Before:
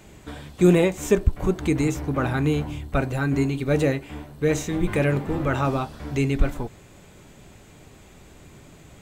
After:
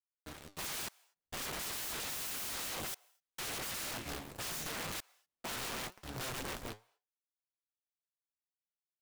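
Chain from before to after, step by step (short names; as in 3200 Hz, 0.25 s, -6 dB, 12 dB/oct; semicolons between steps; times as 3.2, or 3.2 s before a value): one diode to ground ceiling -9 dBFS; Doppler pass-by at 2.51, 13 m/s, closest 4.3 m; AGC gain up to 4.5 dB; requantised 8-bit, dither none; flange 0.83 Hz, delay 4.3 ms, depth 6.7 ms, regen +76%; wrapped overs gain 50 dB; step gate "xxxxxx...xxxxx" 102 bpm -60 dB; on a send: ladder high-pass 500 Hz, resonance 20% + reverb, pre-delay 0.103 s, DRR 26.5 dB; on the sum: gain +14.5 dB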